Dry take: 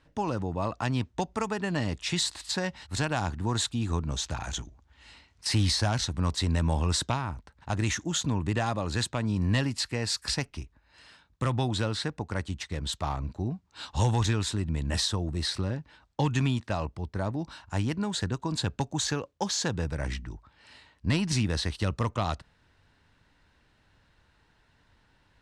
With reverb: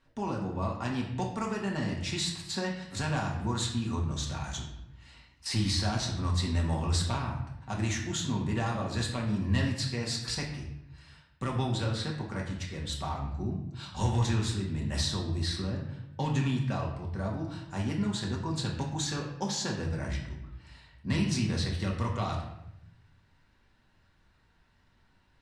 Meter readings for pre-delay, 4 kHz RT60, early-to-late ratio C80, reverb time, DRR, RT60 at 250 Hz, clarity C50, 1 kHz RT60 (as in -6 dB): 4 ms, 0.60 s, 8.0 dB, 0.85 s, -2.0 dB, 1.1 s, 5.5 dB, 0.75 s